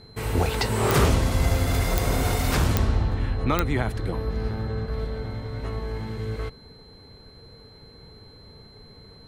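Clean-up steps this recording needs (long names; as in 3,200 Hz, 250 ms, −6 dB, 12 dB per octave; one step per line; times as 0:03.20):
click removal
notch filter 4,100 Hz, Q 30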